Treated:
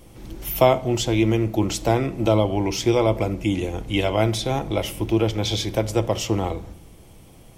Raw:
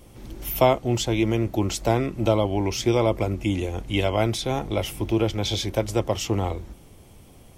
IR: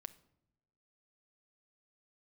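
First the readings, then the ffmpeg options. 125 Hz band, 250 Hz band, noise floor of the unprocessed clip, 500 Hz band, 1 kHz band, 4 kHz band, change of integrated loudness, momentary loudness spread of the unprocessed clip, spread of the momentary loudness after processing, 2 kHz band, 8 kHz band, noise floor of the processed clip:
+1.5 dB, +2.5 dB, −49 dBFS, +2.0 dB, +1.5 dB, +1.5 dB, +2.0 dB, 6 LU, 7 LU, +1.5 dB, +1.5 dB, −47 dBFS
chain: -filter_complex "[1:a]atrim=start_sample=2205,afade=type=out:start_time=0.33:duration=0.01,atrim=end_sample=14994[link_01];[0:a][link_01]afir=irnorm=-1:irlink=0,volume=7dB"

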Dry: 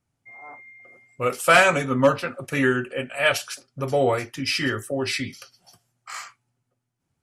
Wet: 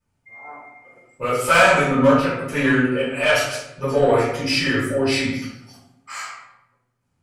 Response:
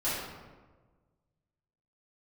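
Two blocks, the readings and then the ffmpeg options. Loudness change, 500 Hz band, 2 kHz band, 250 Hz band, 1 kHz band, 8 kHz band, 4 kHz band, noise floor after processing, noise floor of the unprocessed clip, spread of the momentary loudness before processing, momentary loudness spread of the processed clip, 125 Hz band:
+3.5 dB, +4.0 dB, +3.0 dB, +6.5 dB, +3.5 dB, +2.0 dB, +3.0 dB, −71 dBFS, −79 dBFS, 20 LU, 18 LU, +4.5 dB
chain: -filter_complex "[0:a]aeval=exprs='0.501*(cos(1*acos(clip(val(0)/0.501,-1,1)))-cos(1*PI/2))+0.0631*(cos(5*acos(clip(val(0)/0.501,-1,1)))-cos(5*PI/2))':channel_layout=same[link_01];[1:a]atrim=start_sample=2205,asetrate=74970,aresample=44100[link_02];[link_01][link_02]afir=irnorm=-1:irlink=0,volume=-3.5dB"

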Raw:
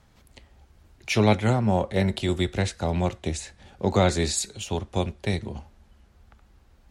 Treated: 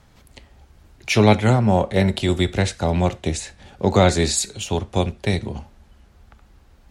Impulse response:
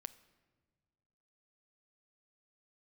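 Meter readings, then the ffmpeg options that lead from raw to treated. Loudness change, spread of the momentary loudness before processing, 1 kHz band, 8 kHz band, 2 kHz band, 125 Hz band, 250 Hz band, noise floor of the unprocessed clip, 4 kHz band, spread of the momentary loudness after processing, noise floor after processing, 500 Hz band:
+5.5 dB, 11 LU, +5.5 dB, +5.5 dB, +5.5 dB, +5.5 dB, +5.5 dB, −58 dBFS, +5.5 dB, 11 LU, −53 dBFS, +5.5 dB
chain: -filter_complex "[0:a]asplit=2[link_01][link_02];[1:a]atrim=start_sample=2205,atrim=end_sample=3969[link_03];[link_02][link_03]afir=irnorm=-1:irlink=0,volume=12dB[link_04];[link_01][link_04]amix=inputs=2:normalize=0,volume=-5dB"

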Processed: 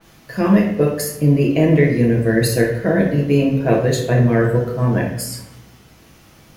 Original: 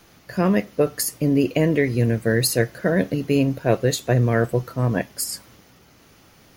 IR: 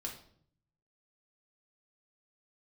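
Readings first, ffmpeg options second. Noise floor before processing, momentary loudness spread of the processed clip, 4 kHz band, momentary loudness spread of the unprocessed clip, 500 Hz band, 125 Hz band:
−53 dBFS, 7 LU, −0.5 dB, 5 LU, +4.0 dB, +5.5 dB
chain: -filter_complex "[0:a]acrusher=bits=8:mix=0:aa=0.5[link_01];[1:a]atrim=start_sample=2205,asetrate=30870,aresample=44100[link_02];[link_01][link_02]afir=irnorm=-1:irlink=0,adynamicequalizer=threshold=0.00891:dfrequency=3200:dqfactor=0.7:tfrequency=3200:tqfactor=0.7:attack=5:release=100:ratio=0.375:range=2.5:mode=cutabove:tftype=highshelf,volume=2.5dB"

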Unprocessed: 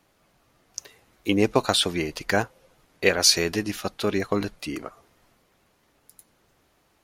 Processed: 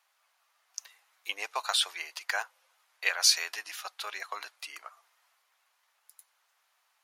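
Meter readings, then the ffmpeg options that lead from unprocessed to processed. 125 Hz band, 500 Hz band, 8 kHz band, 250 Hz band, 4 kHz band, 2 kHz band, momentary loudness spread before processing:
below −40 dB, −21.5 dB, −4.5 dB, below −35 dB, −4.5 dB, −4.5 dB, 21 LU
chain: -af "highpass=frequency=850:width=0.5412,highpass=frequency=850:width=1.3066,volume=-4.5dB"

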